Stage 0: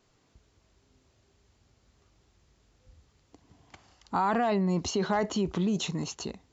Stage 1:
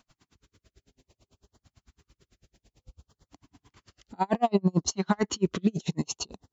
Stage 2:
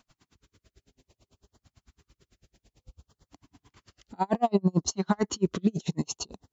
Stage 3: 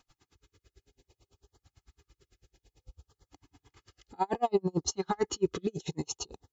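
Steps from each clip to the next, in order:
LFO notch saw up 0.61 Hz 400–2700 Hz; logarithmic tremolo 9 Hz, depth 40 dB; trim +9 dB
dynamic bell 2.4 kHz, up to -5 dB, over -46 dBFS, Q 1.1
comb 2.4 ms, depth 62%; trim -3.5 dB

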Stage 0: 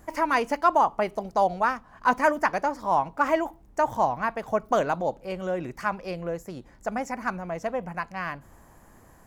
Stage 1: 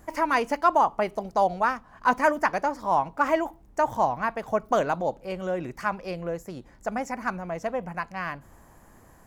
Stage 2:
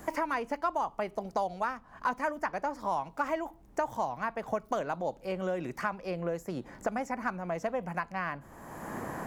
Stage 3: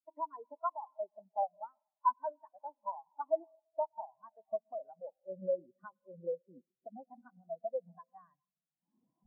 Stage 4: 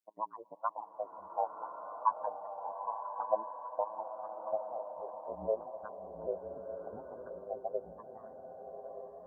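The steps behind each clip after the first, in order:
no audible change
three bands compressed up and down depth 100%; trim -8 dB
on a send at -7 dB: reverberation RT60 3.2 s, pre-delay 85 ms; on the sum: spectral contrast expander 4:1; trim -2.5 dB
repeats whose band climbs or falls 601 ms, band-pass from 270 Hz, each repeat 0.7 oct, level -10 dB; AM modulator 110 Hz, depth 100%; swelling reverb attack 1300 ms, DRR 4.5 dB; trim +4 dB

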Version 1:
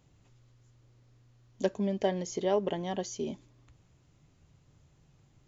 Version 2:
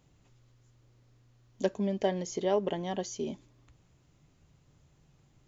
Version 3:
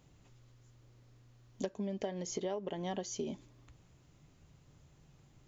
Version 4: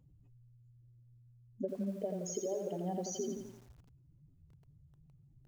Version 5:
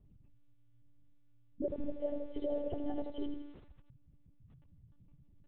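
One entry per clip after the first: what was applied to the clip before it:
peaking EQ 100 Hz -4 dB 0.43 oct
compression 16:1, threshold -35 dBFS, peak gain reduction 14 dB; trim +1.5 dB
spectral contrast enhancement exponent 2.2; bit-crushed delay 85 ms, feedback 55%, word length 10-bit, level -5 dB
monotone LPC vocoder at 8 kHz 290 Hz; trim +2 dB

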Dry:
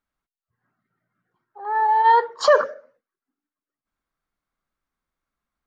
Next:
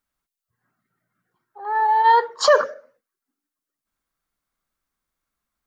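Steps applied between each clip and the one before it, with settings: treble shelf 4.4 kHz +9.5 dB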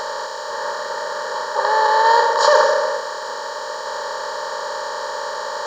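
spectral levelling over time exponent 0.2; trim -3 dB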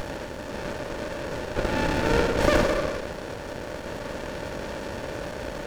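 sliding maximum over 33 samples; trim -3.5 dB

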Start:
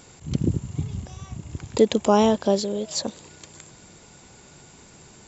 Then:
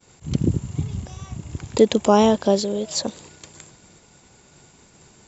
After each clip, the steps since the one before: expander -43 dBFS; trim +2.5 dB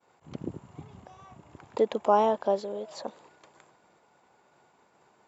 band-pass filter 870 Hz, Q 1.2; trim -3 dB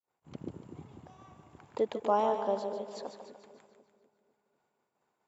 expander -54 dBFS; two-band feedback delay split 460 Hz, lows 248 ms, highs 147 ms, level -8 dB; trim -5.5 dB

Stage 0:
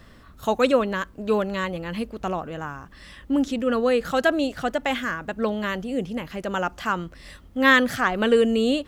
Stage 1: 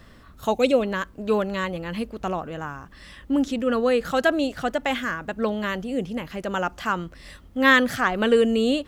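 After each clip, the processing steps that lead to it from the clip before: time-frequency box 0.52–0.83 s, 870–2000 Hz -10 dB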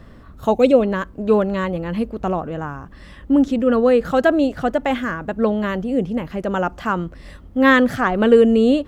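tilt shelf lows +6 dB, about 1.5 kHz; trim +1.5 dB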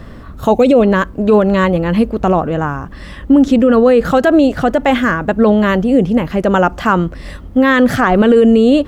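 loudness maximiser +11 dB; trim -1 dB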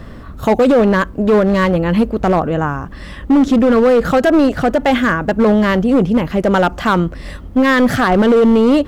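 hard clipper -7 dBFS, distortion -14 dB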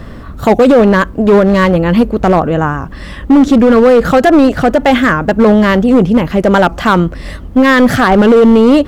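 warped record 78 rpm, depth 100 cents; trim +4.5 dB

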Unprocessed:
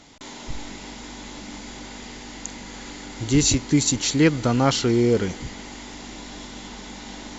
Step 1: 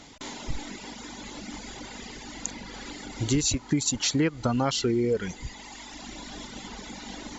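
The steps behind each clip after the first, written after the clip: reverb removal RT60 1.9 s; compression 6:1, threshold -23 dBFS, peak gain reduction 10 dB; trim +1.5 dB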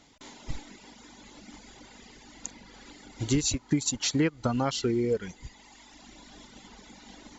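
upward expansion 1.5:1, over -40 dBFS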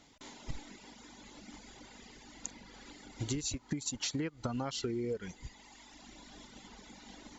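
compression 12:1, threshold -29 dBFS, peak gain reduction 10 dB; trim -3 dB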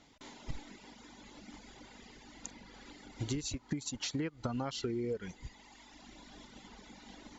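distance through air 52 m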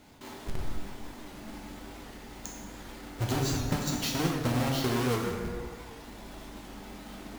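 square wave that keeps the level; plate-style reverb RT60 2 s, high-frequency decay 0.55×, DRR -2.5 dB; warped record 78 rpm, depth 100 cents

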